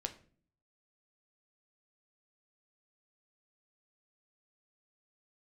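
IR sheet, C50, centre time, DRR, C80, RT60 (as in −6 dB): 14.5 dB, 7 ms, 6.0 dB, 18.5 dB, 0.45 s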